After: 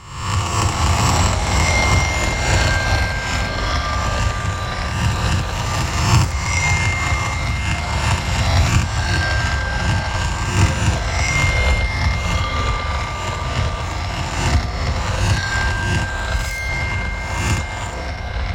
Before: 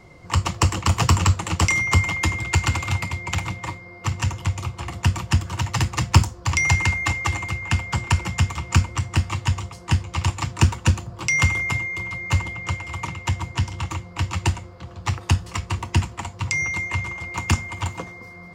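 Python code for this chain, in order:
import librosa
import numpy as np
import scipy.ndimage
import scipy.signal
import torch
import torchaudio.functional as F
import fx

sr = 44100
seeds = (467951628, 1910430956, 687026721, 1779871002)

p1 = fx.spec_swells(x, sr, rise_s=0.89)
p2 = p1 + fx.echo_single(p1, sr, ms=70, db=-4.0, dry=0)
p3 = fx.clip_hard(p2, sr, threshold_db=-22.0, at=(16.06, 16.69))
p4 = fx.echo_pitch(p3, sr, ms=367, semitones=-5, count=2, db_per_echo=-3.0)
y = F.gain(torch.from_numpy(p4), -3.5).numpy()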